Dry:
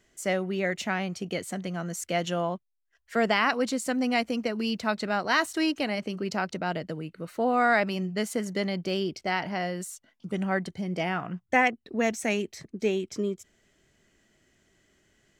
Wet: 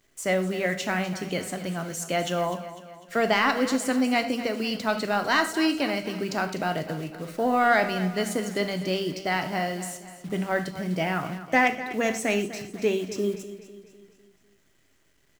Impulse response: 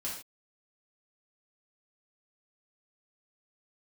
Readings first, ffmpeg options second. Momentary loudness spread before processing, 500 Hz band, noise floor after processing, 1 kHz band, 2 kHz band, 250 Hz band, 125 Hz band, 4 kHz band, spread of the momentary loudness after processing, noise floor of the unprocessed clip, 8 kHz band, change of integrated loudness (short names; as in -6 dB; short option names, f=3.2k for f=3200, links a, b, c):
10 LU, +2.5 dB, -64 dBFS, +2.5 dB, +2.0 dB, +2.0 dB, +2.0 dB, +2.5 dB, 11 LU, -74 dBFS, +3.0 dB, +2.0 dB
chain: -filter_complex "[0:a]acrusher=bits=9:dc=4:mix=0:aa=0.000001,asoftclip=type=tanh:threshold=-12dB,aecho=1:1:250|500|750|1000|1250:0.2|0.0978|0.0479|0.0235|0.0115,asplit=2[a][b];[1:a]atrim=start_sample=2205,afade=t=out:st=0.18:d=0.01,atrim=end_sample=8379[c];[b][c]afir=irnorm=-1:irlink=0,volume=-6dB[d];[a][d]amix=inputs=2:normalize=0"